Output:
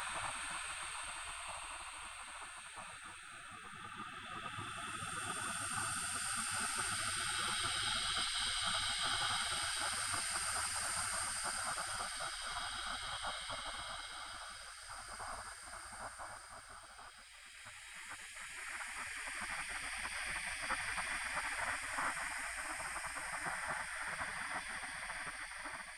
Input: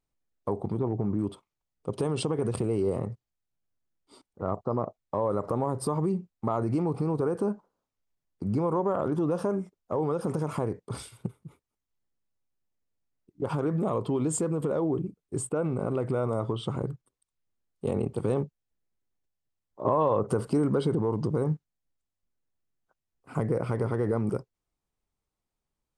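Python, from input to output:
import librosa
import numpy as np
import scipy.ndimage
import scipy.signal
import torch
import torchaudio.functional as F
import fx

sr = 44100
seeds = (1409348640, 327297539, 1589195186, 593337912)

y = fx.reverse_delay_fb(x, sr, ms=580, feedback_pct=43, wet_db=0.0)
y = fx.peak_eq(y, sr, hz=89.0, db=-13.0, octaves=2.4)
y = fx.paulstretch(y, sr, seeds[0], factor=4.1, window_s=1.0, from_s=18.8)
y = fx.spec_gate(y, sr, threshold_db=-25, keep='weak')
y = F.gain(torch.from_numpy(y), 10.0).numpy()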